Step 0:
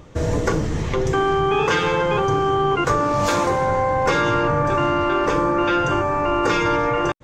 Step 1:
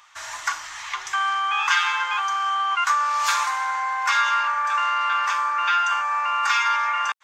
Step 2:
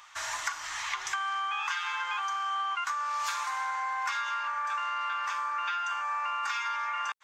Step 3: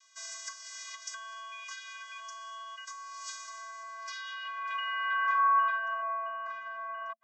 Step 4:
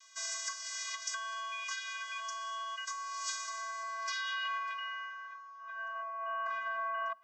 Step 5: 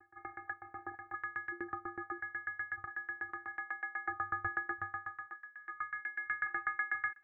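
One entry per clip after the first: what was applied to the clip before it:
inverse Chebyshev high-pass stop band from 510 Hz, stop band 40 dB; trim +2.5 dB
compression 12:1, threshold -29 dBFS, peak gain reduction 14 dB
band-pass sweep 6.3 kHz -> 490 Hz, 3.90–6.34 s; vocoder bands 32, square 223 Hz; trim +8 dB
compressor with a negative ratio -39 dBFS, ratio -1; on a send at -23.5 dB: reverberation RT60 4.8 s, pre-delay 47 ms
frequency inversion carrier 2.8 kHz; sawtooth tremolo in dB decaying 8.1 Hz, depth 25 dB; trim +6.5 dB

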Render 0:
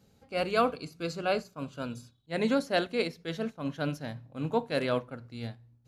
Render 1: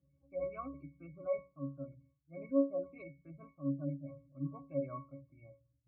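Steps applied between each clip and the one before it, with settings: pitch-class resonator C#, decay 0.29 s; spectral gate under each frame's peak -30 dB strong; trim +2 dB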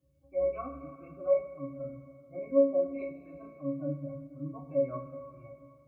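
two-slope reverb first 0.22 s, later 2.6 s, from -18 dB, DRR -5 dB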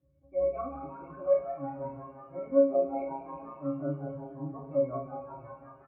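low-pass 1.6 kHz 12 dB/octave; on a send: frequency-shifting echo 181 ms, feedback 63%, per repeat +130 Hz, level -13.5 dB; on the sum: trim +1 dB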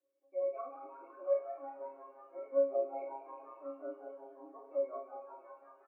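steep high-pass 330 Hz 48 dB/octave; trim -6.5 dB

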